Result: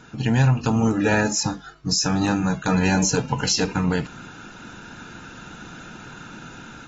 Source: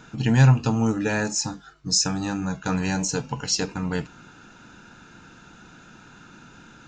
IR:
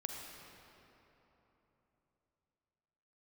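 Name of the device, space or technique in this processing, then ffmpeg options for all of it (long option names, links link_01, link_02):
low-bitrate web radio: -af "dynaudnorm=framelen=570:gausssize=3:maxgain=8.5dB,alimiter=limit=-10.5dB:level=0:latency=1:release=73" -ar 48000 -c:a aac -b:a 24k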